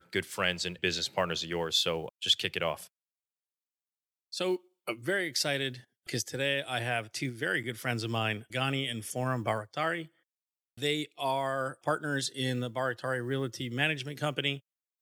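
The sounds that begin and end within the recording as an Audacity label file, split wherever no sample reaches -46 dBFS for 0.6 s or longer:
4.330000	10.060000	sound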